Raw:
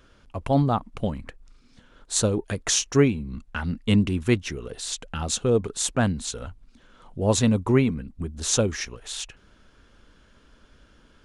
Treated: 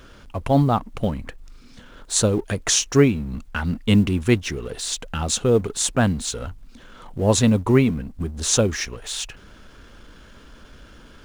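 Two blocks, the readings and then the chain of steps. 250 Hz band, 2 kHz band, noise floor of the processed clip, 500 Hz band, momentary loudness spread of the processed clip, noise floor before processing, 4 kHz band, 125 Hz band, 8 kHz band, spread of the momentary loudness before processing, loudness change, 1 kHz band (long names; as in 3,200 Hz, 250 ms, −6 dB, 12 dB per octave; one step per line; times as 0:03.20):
+3.5 dB, +3.5 dB, −47 dBFS, +3.5 dB, 12 LU, −57 dBFS, +4.0 dB, +3.5 dB, +3.5 dB, 13 LU, +3.5 dB, +3.5 dB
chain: mu-law and A-law mismatch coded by mu
level +3 dB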